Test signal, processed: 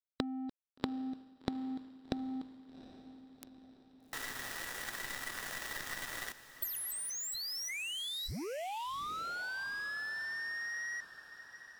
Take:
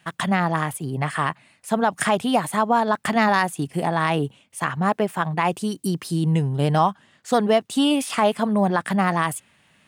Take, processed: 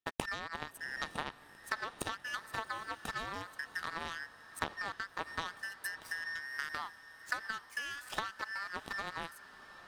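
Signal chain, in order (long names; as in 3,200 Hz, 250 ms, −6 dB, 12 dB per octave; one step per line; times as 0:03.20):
frequency inversion band by band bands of 2,000 Hz
downward compressor 16 to 1, threshold −27 dBFS
power curve on the samples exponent 2
feedback delay with all-pass diffusion 778 ms, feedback 54%, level −14.5 dB
level +1.5 dB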